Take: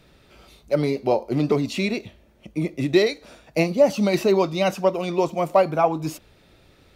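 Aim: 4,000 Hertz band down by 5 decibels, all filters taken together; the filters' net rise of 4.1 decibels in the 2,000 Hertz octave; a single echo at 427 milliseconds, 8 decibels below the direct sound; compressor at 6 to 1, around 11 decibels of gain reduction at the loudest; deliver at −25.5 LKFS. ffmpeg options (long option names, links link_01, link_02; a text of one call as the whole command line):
ffmpeg -i in.wav -af "equalizer=frequency=2000:width_type=o:gain=7.5,equalizer=frequency=4000:width_type=o:gain=-8.5,acompressor=threshold=-23dB:ratio=6,aecho=1:1:427:0.398,volume=3dB" out.wav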